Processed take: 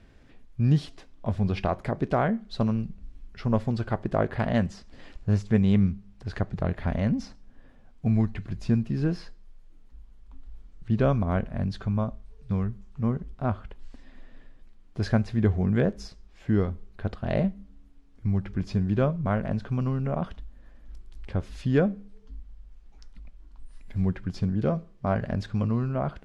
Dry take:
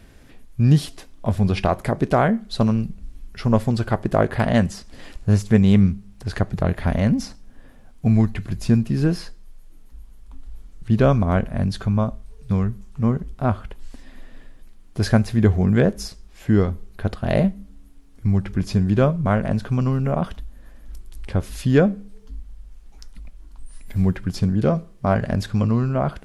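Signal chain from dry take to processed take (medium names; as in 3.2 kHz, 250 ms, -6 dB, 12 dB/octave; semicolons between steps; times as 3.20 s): distance through air 91 m; trim -6.5 dB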